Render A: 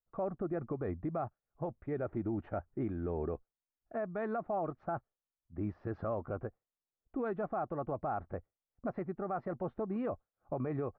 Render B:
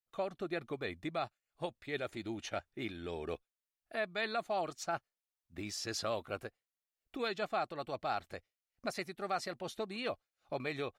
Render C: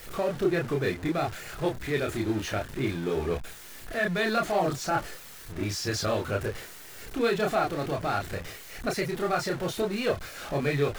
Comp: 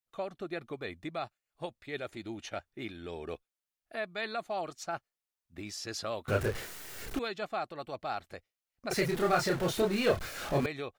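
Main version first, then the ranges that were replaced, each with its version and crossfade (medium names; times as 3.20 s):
B
6.28–7.19 s: from C
8.91–10.66 s: from C
not used: A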